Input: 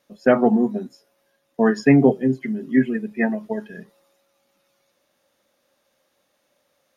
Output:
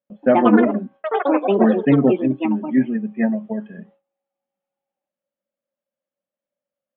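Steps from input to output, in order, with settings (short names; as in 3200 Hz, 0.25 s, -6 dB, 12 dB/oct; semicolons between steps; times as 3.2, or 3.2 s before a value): small resonant body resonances 200/560 Hz, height 11 dB, ringing for 30 ms; echoes that change speed 0.159 s, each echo +6 st, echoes 3; elliptic low-pass 3200 Hz, stop band 40 dB; gate with hold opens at -37 dBFS; gain -5.5 dB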